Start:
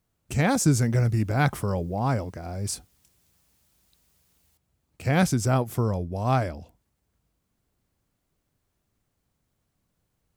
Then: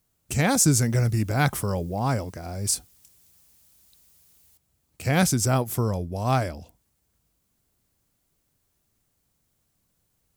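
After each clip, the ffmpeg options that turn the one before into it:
ffmpeg -i in.wav -af "highshelf=frequency=4400:gain=10" out.wav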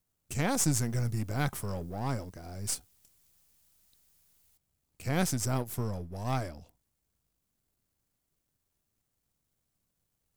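ffmpeg -i in.wav -af "aeval=exprs='if(lt(val(0),0),0.447*val(0),val(0))':channel_layout=same,volume=-6dB" out.wav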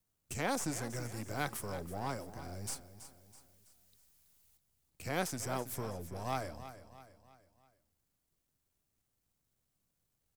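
ffmpeg -i in.wav -filter_complex "[0:a]acrossover=split=310|1900[link_01][link_02][link_03];[link_01]acompressor=threshold=-40dB:ratio=6[link_04];[link_03]alimiter=level_in=4dB:limit=-24dB:level=0:latency=1:release=125,volume=-4dB[link_05];[link_04][link_02][link_05]amix=inputs=3:normalize=0,aecho=1:1:327|654|981|1308:0.224|0.101|0.0453|0.0204,volume=-2dB" out.wav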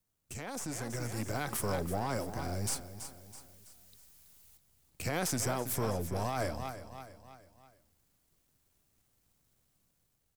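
ffmpeg -i in.wav -af "alimiter=level_in=7.5dB:limit=-24dB:level=0:latency=1:release=37,volume=-7.5dB,dynaudnorm=framelen=430:gausssize=5:maxgain=8.5dB" out.wav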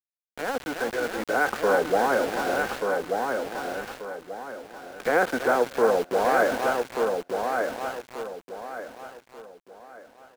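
ffmpeg -i in.wav -filter_complex "[0:a]highpass=frequency=240:width=0.5412,highpass=frequency=240:width=1.3066,equalizer=frequency=480:width_type=q:width=4:gain=10,equalizer=frequency=770:width_type=q:width=4:gain=5,equalizer=frequency=1500:width_type=q:width=4:gain=10,lowpass=frequency=2100:width=0.5412,lowpass=frequency=2100:width=1.3066,aeval=exprs='val(0)*gte(abs(val(0)),0.0112)':channel_layout=same,asplit=2[link_01][link_02];[link_02]aecho=0:1:1185|2370|3555|4740:0.596|0.191|0.061|0.0195[link_03];[link_01][link_03]amix=inputs=2:normalize=0,volume=8.5dB" out.wav

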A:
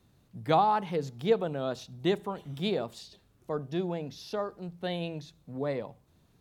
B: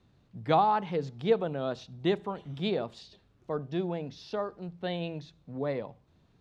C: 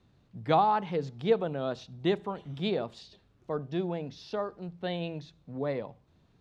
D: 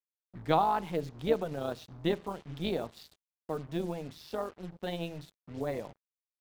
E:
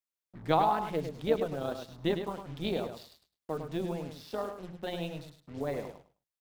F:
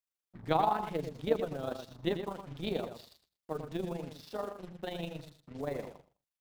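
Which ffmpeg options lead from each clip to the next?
ffmpeg -i in.wav -af "lowpass=4600" out.wav
ffmpeg -i in.wav -af anull out.wav
ffmpeg -i in.wav -af "acrusher=bits=7:mix=0:aa=0.5,tremolo=f=160:d=0.621" out.wav
ffmpeg -i in.wav -af "bandreject=frequency=60:width_type=h:width=6,bandreject=frequency=120:width_type=h:width=6,bandreject=frequency=180:width_type=h:width=6,aecho=1:1:104|208|312:0.398|0.0677|0.0115" out.wav
ffmpeg -i in.wav -af "tremolo=f=25:d=0.571" out.wav

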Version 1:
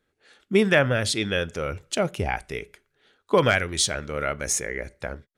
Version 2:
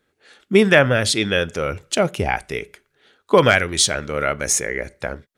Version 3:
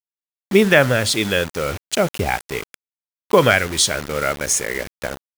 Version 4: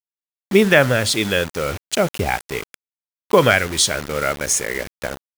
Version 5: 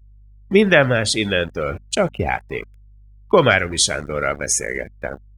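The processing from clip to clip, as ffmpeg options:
ffmpeg -i in.wav -af "lowshelf=frequency=61:gain=-9,volume=6dB" out.wav
ffmpeg -i in.wav -af "acrusher=bits=4:mix=0:aa=0.000001" out.wav
ffmpeg -i in.wav -af anull out.wav
ffmpeg -i in.wav -af "aeval=exprs='val(0)+0.00794*(sin(2*PI*50*n/s)+sin(2*PI*2*50*n/s)/2+sin(2*PI*3*50*n/s)/3+sin(2*PI*4*50*n/s)/4+sin(2*PI*5*50*n/s)/5)':channel_layout=same,afftdn=noise_reduction=26:noise_floor=-30" out.wav

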